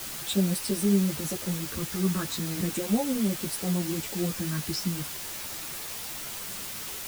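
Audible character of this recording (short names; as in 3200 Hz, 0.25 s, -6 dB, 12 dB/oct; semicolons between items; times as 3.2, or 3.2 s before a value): phasing stages 6, 0.37 Hz, lowest notch 720–1900 Hz; a quantiser's noise floor 6-bit, dither triangular; a shimmering, thickened sound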